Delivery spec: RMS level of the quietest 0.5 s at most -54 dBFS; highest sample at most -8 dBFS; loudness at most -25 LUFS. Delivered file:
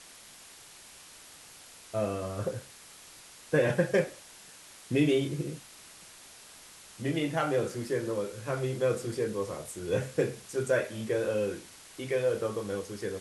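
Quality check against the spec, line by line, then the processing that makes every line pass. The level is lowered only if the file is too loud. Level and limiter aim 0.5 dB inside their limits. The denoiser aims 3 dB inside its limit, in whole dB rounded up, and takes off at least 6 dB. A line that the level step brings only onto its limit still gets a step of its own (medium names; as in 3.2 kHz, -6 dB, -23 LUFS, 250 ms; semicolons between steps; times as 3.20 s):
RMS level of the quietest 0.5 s -52 dBFS: fail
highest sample -13.0 dBFS: pass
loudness -31.0 LUFS: pass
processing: noise reduction 6 dB, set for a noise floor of -52 dBFS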